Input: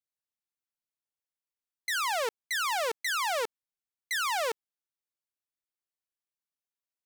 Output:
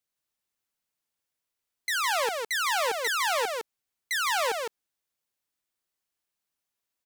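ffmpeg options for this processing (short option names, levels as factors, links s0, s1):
-filter_complex "[0:a]alimiter=level_in=2:limit=0.0631:level=0:latency=1,volume=0.501,asplit=2[s0][s1];[s1]aecho=0:1:159:0.631[s2];[s0][s2]amix=inputs=2:normalize=0,volume=2.24"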